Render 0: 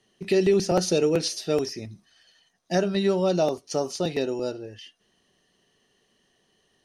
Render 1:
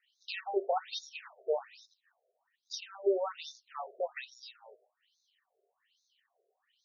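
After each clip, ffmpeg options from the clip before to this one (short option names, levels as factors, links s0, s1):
-af "aeval=exprs='if(lt(val(0),0),0.447*val(0),val(0))':c=same,bandreject=f=308.5:t=h:w=4,bandreject=f=617:t=h:w=4,bandreject=f=925.5:t=h:w=4,bandreject=f=1234:t=h:w=4,bandreject=f=1542.5:t=h:w=4,bandreject=f=1851:t=h:w=4,bandreject=f=2159.5:t=h:w=4,bandreject=f=2468:t=h:w=4,bandreject=f=2776.5:t=h:w=4,afftfilt=real='re*between(b*sr/1024,500*pow(5000/500,0.5+0.5*sin(2*PI*1.2*pts/sr))/1.41,500*pow(5000/500,0.5+0.5*sin(2*PI*1.2*pts/sr))*1.41)':imag='im*between(b*sr/1024,500*pow(5000/500,0.5+0.5*sin(2*PI*1.2*pts/sr))/1.41,500*pow(5000/500,0.5+0.5*sin(2*PI*1.2*pts/sr))*1.41)':win_size=1024:overlap=0.75"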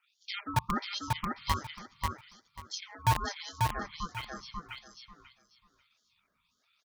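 -filter_complex "[0:a]acrossover=split=520[s0][s1];[s0]acrusher=bits=4:mix=0:aa=0.000001[s2];[s2][s1]amix=inputs=2:normalize=0,aeval=exprs='val(0)*sin(2*PI*510*n/s)':c=same,aecho=1:1:540|1080|1620:0.708|0.142|0.0283,volume=1.68"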